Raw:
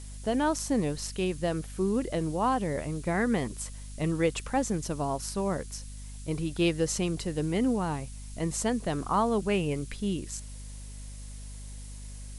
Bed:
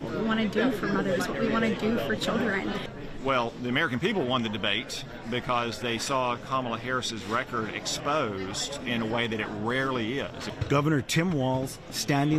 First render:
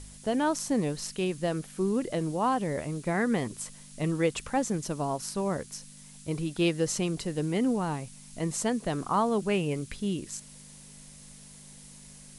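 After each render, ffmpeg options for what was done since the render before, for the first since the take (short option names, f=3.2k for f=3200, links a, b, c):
-af "bandreject=f=50:t=h:w=4,bandreject=f=100:t=h:w=4"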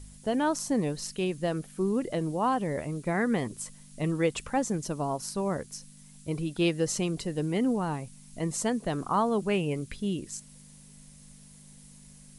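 -af "afftdn=nr=6:nf=-50"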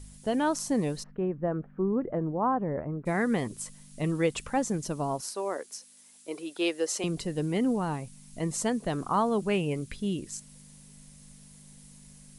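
-filter_complex "[0:a]asplit=3[a][b][c];[a]afade=t=out:st=1.02:d=0.02[d];[b]lowpass=f=1.5k:w=0.5412,lowpass=f=1.5k:w=1.3066,afade=t=in:st=1.02:d=0.02,afade=t=out:st=3.05:d=0.02[e];[c]afade=t=in:st=3.05:d=0.02[f];[d][e][f]amix=inputs=3:normalize=0,asettb=1/sr,asplit=3[g][h][i];[g]atrim=end=5.214[j];[h]atrim=start=5.21:end=7.04,asetpts=PTS-STARTPTS,afade=t=in:d=0.004:c=qsin,afade=t=out:st=1.826:d=0.004:c=qsin,highpass=f=330:w=0.5412,highpass=f=330:w=1.3066[k];[i]atrim=start=7.036[l];[j][k]acrossfade=d=0.004:c1=hsin:c2=qsin[m];[m][l]acrossfade=d=0.004:c1=qsin:c2=hsin"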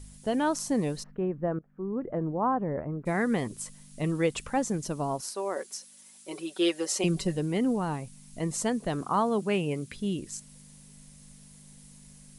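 -filter_complex "[0:a]asettb=1/sr,asplit=3[a][b][c];[a]atrim=end=5.564[d];[b]atrim=start=5.56:end=7.37,asetpts=PTS-STARTPTS,afade=t=in:d=0.004:c=qsin,afade=t=out:st=1.806:d=0.004:c=qsin,aecho=1:1:5.3:0.88,atrim=end_sample=79821[e];[c]atrim=start=7.366[f];[d][e]acrossfade=d=0.004:c1=hsin:c2=qsin[g];[g][f]acrossfade=d=0.004:c1=qsin:c2=hsin,asettb=1/sr,asplit=3[h][i][j];[h]atrim=end=9.014[k];[i]atrim=start=9.01:end=9.95,asetpts=PTS-STARTPTS,afade=t=in:d=0.004:c=qsin,afade=t=out:st=0.936:d=0.004:c=qsin,highpass=100[l];[j]atrim=start=9.946[m];[k][l]acrossfade=d=0.004:c1=hsin:c2=qsin[n];[n][m]acrossfade=d=0.004:c1=qsin:c2=hsin,asplit=2[o][p];[o]atrim=end=1.59,asetpts=PTS-STARTPTS,afade=t=out:st=1.586:d=0.004:c=hsin:silence=0.112202[q];[p]atrim=start=1.59,asetpts=PTS-STARTPTS,afade=t=in:d=0.63:silence=0.112202[r];[q][r]concat=n=2:v=0:a=1"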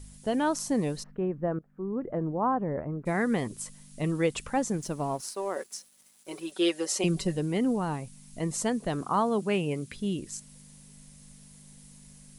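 -filter_complex "[0:a]asettb=1/sr,asplit=3[a][b][c];[a]atrim=end=4.774[d];[b]atrim=start=4.77:end=6.52,asetpts=PTS-STARTPTS,afade=t=in:d=0.004:c=qsin,afade=t=out:st=1.746:d=0.004:c=qsin,aeval=exprs='sgn(val(0))*max(abs(val(0))-0.00188,0)':c=same[e];[c]atrim=start=6.516[f];[d][e]acrossfade=d=0.004:c1=hsin:c2=qsin[g];[g][f]acrossfade=d=0.004:c1=qsin:c2=hsin"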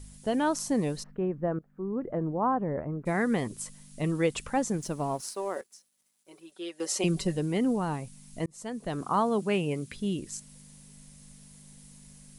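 -filter_complex "[0:a]asplit=4[a][b][c][d];[a]atrim=end=5.61,asetpts=PTS-STARTPTS,afade=t=out:st=5.17:d=0.44:c=log:silence=0.223872[e];[b]atrim=start=5.61:end=6.8,asetpts=PTS-STARTPTS,volume=-13dB[f];[c]atrim=start=6.8:end=8.46,asetpts=PTS-STARTPTS,afade=t=in:d=0.44:c=log:silence=0.223872,afade=t=out:st=1.656:d=0.004:c=hsin[g];[d]atrim=start=8.46,asetpts=PTS-STARTPTS,afade=t=in:d=0.62[h];[e][f][g][h]concat=n=4:v=0:a=1"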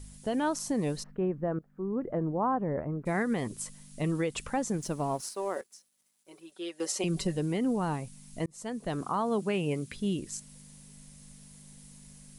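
-af "alimiter=limit=-21dB:level=0:latency=1:release=146"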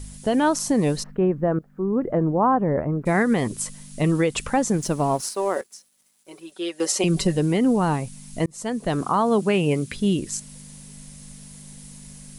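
-af "volume=9.5dB"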